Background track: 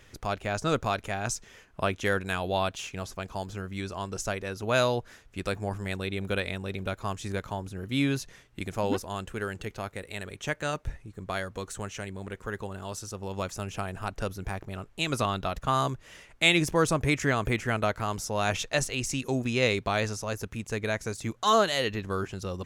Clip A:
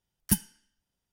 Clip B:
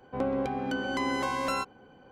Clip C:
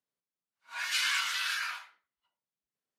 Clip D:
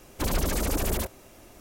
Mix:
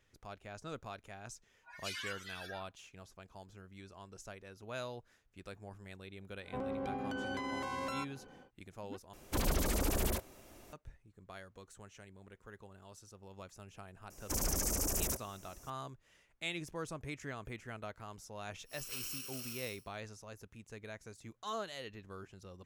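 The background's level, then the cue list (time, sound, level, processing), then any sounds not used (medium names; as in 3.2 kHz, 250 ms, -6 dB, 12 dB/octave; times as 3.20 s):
background track -18 dB
0.92 s: add C -8.5 dB + expander on every frequency bin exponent 3
6.40 s: add B -2 dB, fades 0.10 s + peak limiter -29.5 dBFS
9.13 s: replace with D -6 dB
14.10 s: add D -10.5 dB + resonant high shelf 4.7 kHz +7 dB, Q 3
17.98 s: add C -13.5 dB + bit-reversed sample order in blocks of 64 samples
not used: A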